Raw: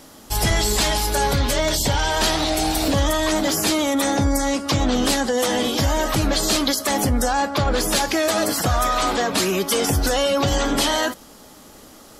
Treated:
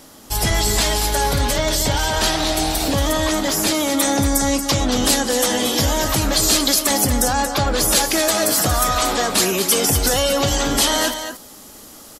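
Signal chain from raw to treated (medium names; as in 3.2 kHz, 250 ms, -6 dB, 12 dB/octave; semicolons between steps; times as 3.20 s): treble shelf 5.2 kHz +3 dB, from 3.94 s +9.5 dB; delay 231 ms -8.5 dB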